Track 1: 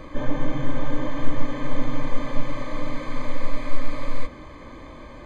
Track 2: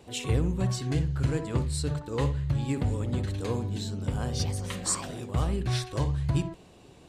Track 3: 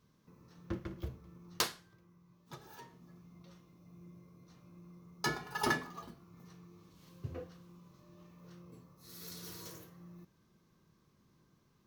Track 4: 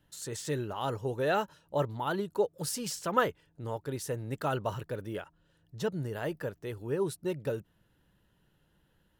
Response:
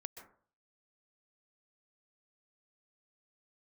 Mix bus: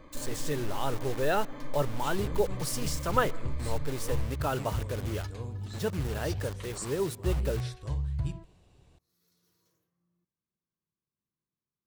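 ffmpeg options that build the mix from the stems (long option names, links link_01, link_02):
-filter_complex "[0:a]acompressor=threshold=-14dB:ratio=6,volume=-12.5dB[link_01];[1:a]asubboost=boost=4.5:cutoff=110,adelay=1900,volume=-12dB,asplit=2[link_02][link_03];[link_03]volume=-15.5dB[link_04];[2:a]volume=-12.5dB[link_05];[3:a]acrusher=bits=6:mix=0:aa=0.000001,volume=-0.5dB,asplit=3[link_06][link_07][link_08];[link_07]volume=-14dB[link_09];[link_08]apad=whole_len=523281[link_10];[link_05][link_10]sidechaingate=range=-13dB:threshold=-43dB:ratio=16:detection=peak[link_11];[4:a]atrim=start_sample=2205[link_12];[link_04][link_09]amix=inputs=2:normalize=0[link_13];[link_13][link_12]afir=irnorm=-1:irlink=0[link_14];[link_01][link_02][link_11][link_06][link_14]amix=inputs=5:normalize=0"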